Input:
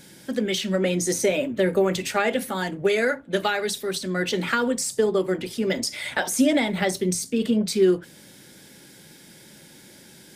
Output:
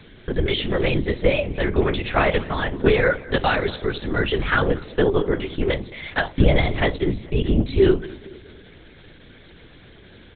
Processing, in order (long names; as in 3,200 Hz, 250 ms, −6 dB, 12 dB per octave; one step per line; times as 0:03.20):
0:01.34–0:01.94: parametric band 280 Hz → 880 Hz −12.5 dB 0.48 octaves
0:05.64–0:06.78: noise gate −26 dBFS, range −6 dB
repeating echo 224 ms, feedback 51%, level −21 dB
convolution reverb RT60 0.35 s, pre-delay 6 ms, DRR 11.5 dB
linear-prediction vocoder at 8 kHz whisper
level +3.5 dB